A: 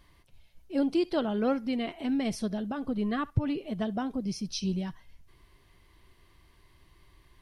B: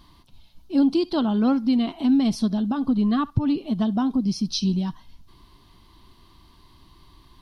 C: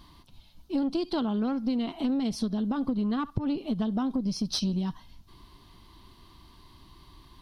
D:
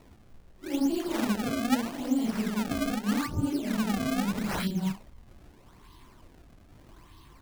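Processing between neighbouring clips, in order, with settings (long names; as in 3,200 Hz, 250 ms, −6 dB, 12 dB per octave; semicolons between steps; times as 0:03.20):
in parallel at −3 dB: downward compressor, threshold −37 dBFS, peak gain reduction 16.5 dB; on the sum: graphic EQ with 10 bands 250 Hz +9 dB, 500 Hz −8 dB, 1,000 Hz +8 dB, 2,000 Hz −10 dB, 4,000 Hz +9 dB, 8,000 Hz −4 dB; level +1.5 dB
one-sided soft clipper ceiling −18.5 dBFS; downward compressor, threshold −25 dBFS, peak gain reduction 8.5 dB
random phases in long frames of 200 ms; sample-and-hold swept by an LFO 27×, swing 160% 0.8 Hz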